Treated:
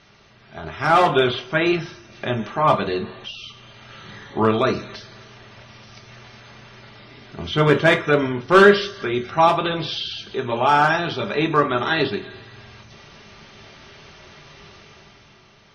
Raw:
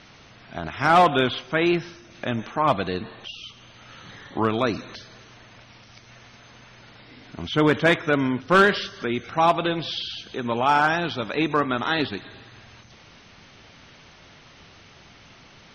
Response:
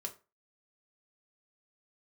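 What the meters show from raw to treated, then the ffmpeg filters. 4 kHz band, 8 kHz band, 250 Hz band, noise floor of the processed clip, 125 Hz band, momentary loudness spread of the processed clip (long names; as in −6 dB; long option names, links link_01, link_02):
+2.5 dB, can't be measured, +1.5 dB, −51 dBFS, +4.0 dB, 19 LU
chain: -filter_complex "[0:a]dynaudnorm=framelen=100:gausssize=17:maxgain=8dB[link_01];[1:a]atrim=start_sample=2205[link_02];[link_01][link_02]afir=irnorm=-1:irlink=0,volume=-1.5dB"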